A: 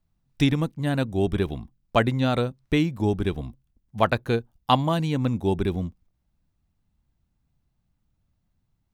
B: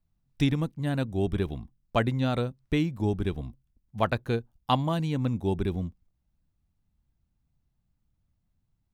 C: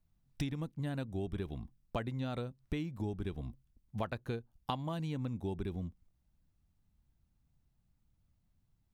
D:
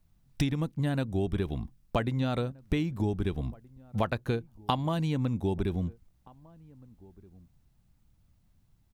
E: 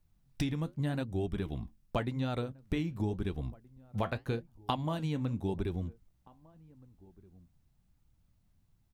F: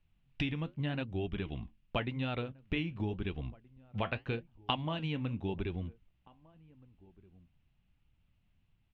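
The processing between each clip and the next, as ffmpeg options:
ffmpeg -i in.wav -af "lowshelf=frequency=200:gain=4,volume=-5.5dB" out.wav
ffmpeg -i in.wav -af "acompressor=threshold=-35dB:ratio=5" out.wav
ffmpeg -i in.wav -filter_complex "[0:a]asplit=2[link_01][link_02];[link_02]adelay=1574,volume=-24dB,highshelf=frequency=4000:gain=-35.4[link_03];[link_01][link_03]amix=inputs=2:normalize=0,volume=8.5dB" out.wav
ffmpeg -i in.wav -af "flanger=delay=2.2:depth=9.1:regen=-69:speed=0.87:shape=sinusoidal" out.wav
ffmpeg -i in.wav -af "lowpass=frequency=2800:width_type=q:width=3.7,volume=-2.5dB" out.wav

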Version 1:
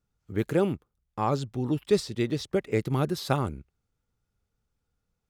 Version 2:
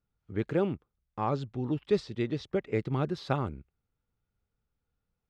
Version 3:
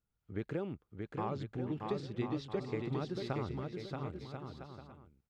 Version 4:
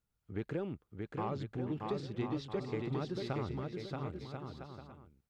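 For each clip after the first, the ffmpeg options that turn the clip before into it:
ffmpeg -i in.wav -af "lowpass=3700,volume=-3.5dB" out.wav
ffmpeg -i in.wav -filter_complex "[0:a]acompressor=threshold=-29dB:ratio=6,asplit=2[link_01][link_02];[link_02]aecho=0:1:630|1040|1306|1479|1591:0.631|0.398|0.251|0.158|0.1[link_03];[link_01][link_03]amix=inputs=2:normalize=0,volume=-4.5dB" out.wav
ffmpeg -i in.wav -af "asoftclip=type=tanh:threshold=-26.5dB,volume=1dB" out.wav

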